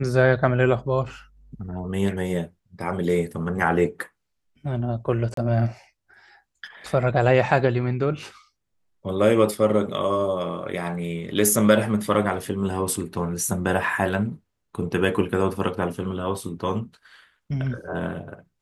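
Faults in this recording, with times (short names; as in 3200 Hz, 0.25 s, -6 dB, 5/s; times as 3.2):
5.34–5.37 gap 33 ms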